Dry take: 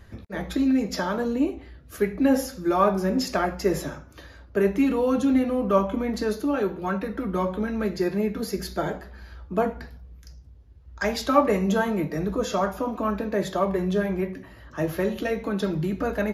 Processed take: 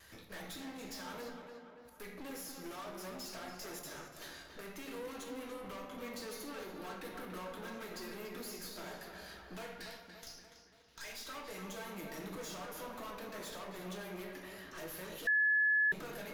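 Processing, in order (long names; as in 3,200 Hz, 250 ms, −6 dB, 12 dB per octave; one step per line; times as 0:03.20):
0:09.57–0:11.13: meter weighting curve D
noise gate with hold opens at −49 dBFS
spectral tilt +4 dB per octave
downward compressor, threshold −33 dBFS, peak gain reduction 18 dB
0:01.29–0:02.00: gate with flip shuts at −41 dBFS, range −30 dB
tube saturation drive 43 dB, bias 0.65
0:03.79–0:04.61: all-pass dispersion highs, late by 41 ms, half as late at 400 Hz
tape delay 287 ms, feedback 58%, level −5 dB, low-pass 2,700 Hz
rectangular room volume 170 cubic metres, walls mixed, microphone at 0.64 metres
0:15.27–0:15.92: beep over 1,710 Hz −24 dBFS
level −2.5 dB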